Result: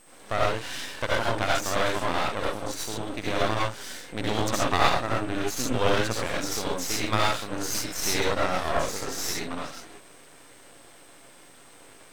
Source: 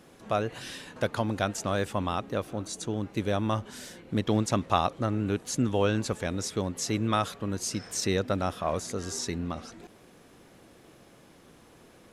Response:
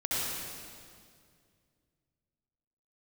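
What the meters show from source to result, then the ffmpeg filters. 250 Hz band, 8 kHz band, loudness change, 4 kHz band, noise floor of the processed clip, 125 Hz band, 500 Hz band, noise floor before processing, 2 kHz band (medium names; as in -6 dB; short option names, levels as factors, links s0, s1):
-2.5 dB, +4.0 dB, +2.5 dB, +7.0 dB, -51 dBFS, -2.5 dB, +2.5 dB, -56 dBFS, +8.5 dB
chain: -filter_complex "[0:a]highpass=f=740:p=1[s0];[1:a]atrim=start_sample=2205,afade=t=out:st=0.19:d=0.01,atrim=end_sample=8820[s1];[s0][s1]afir=irnorm=-1:irlink=0,aeval=exprs='val(0)+0.002*sin(2*PI*8400*n/s)':c=same,highshelf=f=10000:g=-12,aeval=exprs='max(val(0),0)':c=same,volume=2.24"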